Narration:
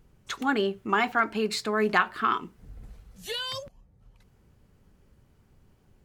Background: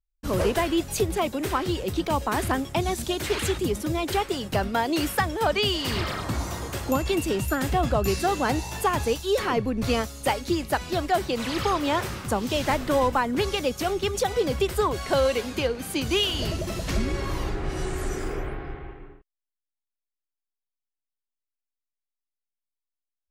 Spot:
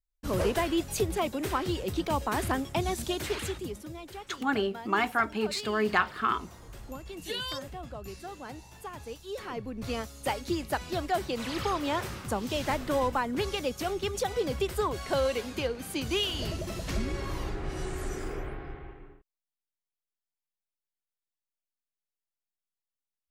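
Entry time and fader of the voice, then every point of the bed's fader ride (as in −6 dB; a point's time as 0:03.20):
4.00 s, −2.5 dB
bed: 0:03.18 −4 dB
0:04.13 −18 dB
0:08.90 −18 dB
0:10.39 −5.5 dB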